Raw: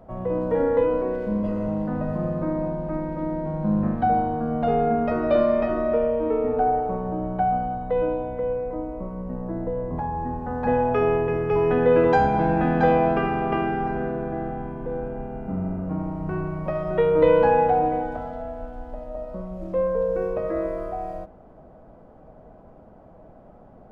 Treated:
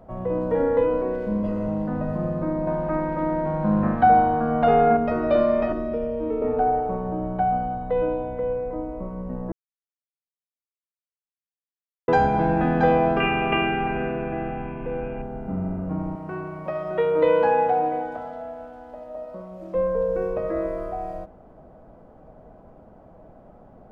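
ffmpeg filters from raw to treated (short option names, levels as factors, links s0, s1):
-filter_complex "[0:a]asettb=1/sr,asplit=3[s0][s1][s2];[s0]atrim=end=2.674[s3];[s1]atrim=start=2.67:end=4.97,asetpts=PTS-STARTPTS,afade=t=in:d=0.004:c=qsin,afade=t=out:st=2.296:d=0.004:c=qsin,equalizer=f=1500:w=0.47:g=9[s4];[s2]atrim=start=4.966[s5];[s3][s4]acrossfade=d=0.004:c1=hsin:c2=qsin[s6];[s6][s5]acrossfade=d=0.004:c1=qsin:c2=hsin,asettb=1/sr,asplit=3[s7][s8][s9];[s7]atrim=end=5.724[s10];[s8]atrim=start=5.72:end=6.42,asetpts=PTS-STARTPTS,afade=t=in:d=0.004:c=qsin,afade=t=out:st=0.696:d=0.004:c=qsin,acrossover=split=440|3000[s11][s12][s13];[s12]acompressor=threshold=0.0224:ratio=6:attack=3.2:release=140:knee=2.83:detection=peak[s14];[s11][s14][s13]amix=inputs=3:normalize=0[s15];[s9]atrim=start=6.416[s16];[s10][s15]acrossfade=d=0.004:c1=hsin:c2=qsin[s17];[s17][s16]acrossfade=d=0.004:c1=qsin:c2=hsin,asettb=1/sr,asplit=3[s18][s19][s20];[s18]atrim=end=13.204[s21];[s19]atrim=start=13.2:end=15.22,asetpts=PTS-STARTPTS,afade=t=in:d=0.004:c=qsin,afade=t=out:st=2.016:d=0.004:c=qsin,lowpass=f=2600:t=q:w=8.7[s22];[s20]atrim=start=15.216[s23];[s21][s22]acrossfade=d=0.004:c1=hsin:c2=qsin[s24];[s24][s23]acrossfade=d=0.004:c1=qsin:c2=hsin,asettb=1/sr,asplit=3[s25][s26][s27];[s25]atrim=end=16.154[s28];[s26]atrim=start=16.15:end=19.75,asetpts=PTS-STARTPTS,afade=t=in:d=0.004:c=qsin,afade=t=out:st=3.596:d=0.004:c=qsin,highpass=f=350:p=1[s29];[s27]atrim=start=19.746[s30];[s28][s29]acrossfade=d=0.004:c1=hsin:c2=qsin[s31];[s31][s30]acrossfade=d=0.004:c1=qsin:c2=hsin,asplit=3[s32][s33][s34];[s32]atrim=end=9.52,asetpts=PTS-STARTPTS,afade=t=out:st=9.516:d=0.004:c=hsin[s35];[s33]atrim=start=9.52:end=12.08,asetpts=PTS-STARTPTS,volume=0[s36];[s34]atrim=start=12.08,asetpts=PTS-STARTPTS,afade=t=in:d=0.004:c=hsin[s37];[s35][s36][s37]concat=n=3:v=0:a=1"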